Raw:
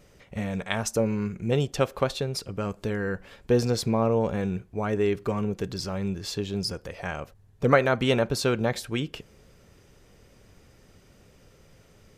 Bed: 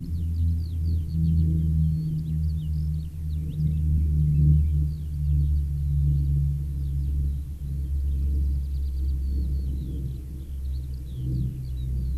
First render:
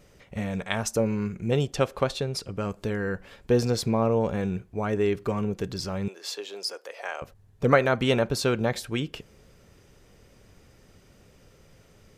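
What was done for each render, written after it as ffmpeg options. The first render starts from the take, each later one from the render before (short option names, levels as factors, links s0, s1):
-filter_complex "[0:a]asettb=1/sr,asplit=3[s0][s1][s2];[s0]atrim=end=1.734[s3];[s1]atrim=start=1.73:end=2.59,asetpts=PTS-STARTPTS,afade=t=in:d=0.004:c=qsin,afade=t=out:st=0.856:d=0.004:c=qsin,lowpass=12000[s4];[s2]atrim=start=2.586[s5];[s3][s4]acrossfade=d=0.004:c1=hsin:c2=qsin[s6];[s6][s5]acrossfade=d=0.004:c1=qsin:c2=hsin,asettb=1/sr,asplit=3[s7][s8][s9];[s7]atrim=end=6.084[s10];[s8]atrim=start=6.08:end=7.22,asetpts=PTS-STARTPTS,afade=t=in:d=0.004:c=qsin,afade=t=out:st=1.136:d=0.004:c=qsin,highpass=f=440:w=0.5412,highpass=f=440:w=1.3066[s11];[s9]atrim=start=7.216[s12];[s10][s11]acrossfade=d=0.004:c1=hsin:c2=qsin[s13];[s13][s12]acrossfade=d=0.004:c1=qsin:c2=hsin"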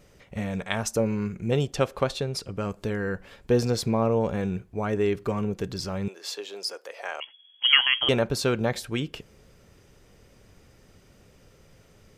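-filter_complex "[0:a]asettb=1/sr,asplit=3[s0][s1][s2];[s0]atrim=end=7.204[s3];[s1]atrim=start=7.2:end=8.09,asetpts=PTS-STARTPTS,afade=t=in:d=0.004:c=qsin,afade=t=out:st=0.886:d=0.004:c=qsin,lowpass=f=2900:t=q:w=0.5098,lowpass=f=2900:t=q:w=0.6013,lowpass=f=2900:t=q:w=0.9,lowpass=f=2900:t=q:w=2.563,afreqshift=-3400[s4];[s2]atrim=start=8.086[s5];[s3][s4]acrossfade=d=0.004:c1=hsin:c2=qsin[s6];[s6][s5]acrossfade=d=0.004:c1=qsin:c2=hsin"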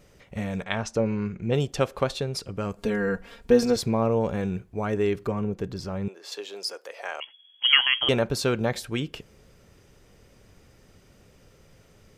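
-filter_complex "[0:a]asettb=1/sr,asplit=3[s0][s1][s2];[s0]atrim=end=0.644[s3];[s1]atrim=start=0.64:end=1.54,asetpts=PTS-STARTPTS,afade=t=in:d=0.004:c=qsin,afade=t=out:st=0.896:d=0.004:c=qsin,lowpass=4700[s4];[s2]atrim=start=1.536[s5];[s3][s4]acrossfade=d=0.004:c1=hsin:c2=qsin[s6];[s6][s5]acrossfade=d=0.004:c1=qsin:c2=hsin,asettb=1/sr,asplit=3[s7][s8][s9];[s7]atrim=end=2.784[s10];[s8]atrim=start=2.78:end=3.76,asetpts=PTS-STARTPTS,afade=t=in:d=0.004:c=qsin,afade=t=out:st=0.976:d=0.004:c=qsin,aecho=1:1:4.3:0.84,atrim=end_sample=43218[s11];[s9]atrim=start=3.756[s12];[s10][s11]acrossfade=d=0.004:c1=hsin:c2=qsin[s13];[s13][s12]acrossfade=d=0.004:c1=qsin:c2=hsin,asettb=1/sr,asplit=3[s14][s15][s16];[s14]atrim=end=5.274[s17];[s15]atrim=start=5.27:end=6.32,asetpts=PTS-STARTPTS,afade=t=in:d=0.004:c=qsin,afade=t=out:st=1.046:d=0.004:c=qsin,highshelf=f=2200:g=-8.5[s18];[s16]atrim=start=6.316[s19];[s17][s18]acrossfade=d=0.004:c1=hsin:c2=qsin[s20];[s20][s19]acrossfade=d=0.004:c1=qsin:c2=hsin"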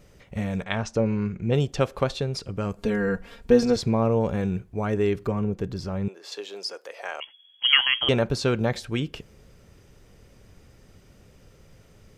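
-filter_complex "[0:a]acrossover=split=7900[s0][s1];[s1]acompressor=threshold=0.00158:ratio=4:attack=1:release=60[s2];[s0][s2]amix=inputs=2:normalize=0,lowshelf=f=190:g=4.5"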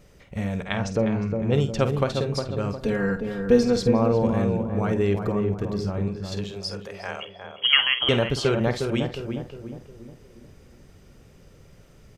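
-filter_complex "[0:a]asplit=2[s0][s1];[s1]adelay=50,volume=0.282[s2];[s0][s2]amix=inputs=2:normalize=0,asplit=2[s3][s4];[s4]adelay=358,lowpass=f=1100:p=1,volume=0.596,asplit=2[s5][s6];[s6]adelay=358,lowpass=f=1100:p=1,volume=0.48,asplit=2[s7][s8];[s8]adelay=358,lowpass=f=1100:p=1,volume=0.48,asplit=2[s9][s10];[s10]adelay=358,lowpass=f=1100:p=1,volume=0.48,asplit=2[s11][s12];[s12]adelay=358,lowpass=f=1100:p=1,volume=0.48,asplit=2[s13][s14];[s14]adelay=358,lowpass=f=1100:p=1,volume=0.48[s15];[s3][s5][s7][s9][s11][s13][s15]amix=inputs=7:normalize=0"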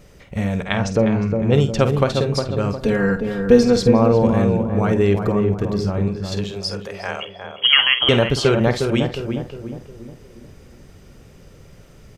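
-af "volume=2,alimiter=limit=0.891:level=0:latency=1"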